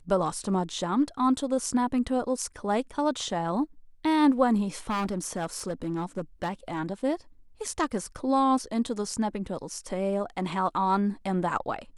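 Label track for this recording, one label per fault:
4.890000	6.800000	clipping −25 dBFS

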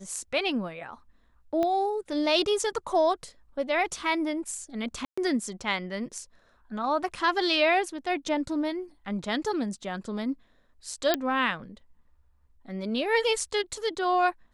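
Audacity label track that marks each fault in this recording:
1.630000	1.630000	click −17 dBFS
5.050000	5.170000	drop-out 125 ms
11.140000	11.140000	click −8 dBFS

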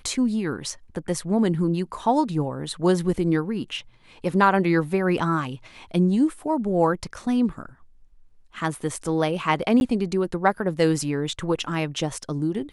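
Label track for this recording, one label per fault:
9.800000	9.810000	drop-out 11 ms

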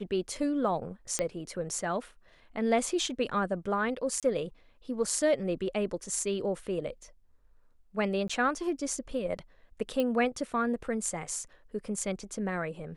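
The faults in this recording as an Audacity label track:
1.190000	1.190000	click −14 dBFS
4.200000	4.230000	drop-out 27 ms
8.280000	8.290000	drop-out
10.000000	10.000000	click −18 dBFS

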